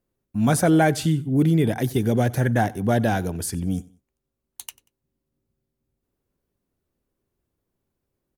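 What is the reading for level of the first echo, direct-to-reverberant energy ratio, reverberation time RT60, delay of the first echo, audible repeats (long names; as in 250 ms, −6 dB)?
−22.0 dB, no reverb audible, no reverb audible, 93 ms, 2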